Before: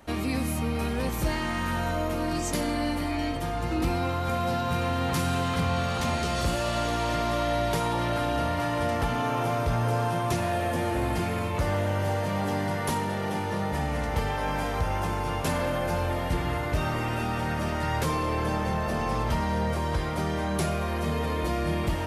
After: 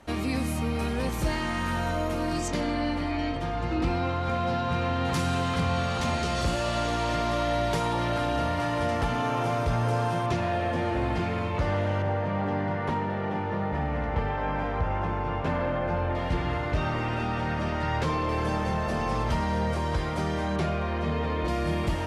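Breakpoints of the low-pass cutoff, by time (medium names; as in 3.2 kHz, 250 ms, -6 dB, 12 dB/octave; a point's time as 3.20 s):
10 kHz
from 2.48 s 4.6 kHz
from 5.05 s 8.4 kHz
from 10.26 s 4.3 kHz
from 12.02 s 2.2 kHz
from 16.15 s 4.6 kHz
from 18.29 s 8.3 kHz
from 20.56 s 3.7 kHz
from 21.48 s 9.1 kHz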